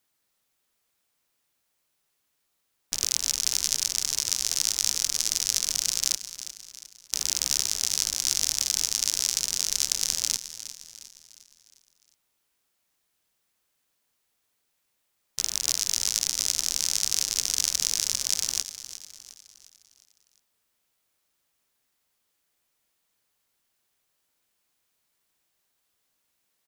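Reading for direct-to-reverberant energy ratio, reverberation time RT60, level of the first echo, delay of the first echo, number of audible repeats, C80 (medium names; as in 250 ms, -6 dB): no reverb, no reverb, -13.0 dB, 356 ms, 4, no reverb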